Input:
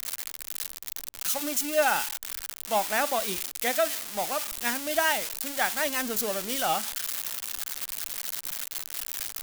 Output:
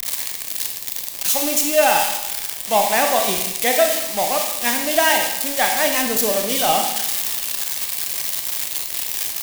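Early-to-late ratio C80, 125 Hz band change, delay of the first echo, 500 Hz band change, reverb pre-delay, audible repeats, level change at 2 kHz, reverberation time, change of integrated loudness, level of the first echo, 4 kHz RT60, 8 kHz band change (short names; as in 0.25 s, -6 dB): 7.5 dB, +9.5 dB, none, +10.0 dB, 27 ms, none, +7.5 dB, 0.95 s, +10.0 dB, none, 0.90 s, +10.0 dB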